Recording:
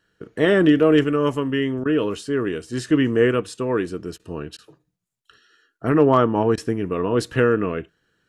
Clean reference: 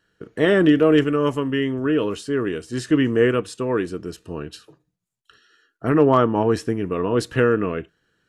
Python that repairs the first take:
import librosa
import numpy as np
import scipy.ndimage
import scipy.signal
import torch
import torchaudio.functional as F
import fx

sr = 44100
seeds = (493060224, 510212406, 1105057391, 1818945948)

y = fx.fix_interpolate(x, sr, at_s=(1.84, 4.18, 4.57, 6.56), length_ms=14.0)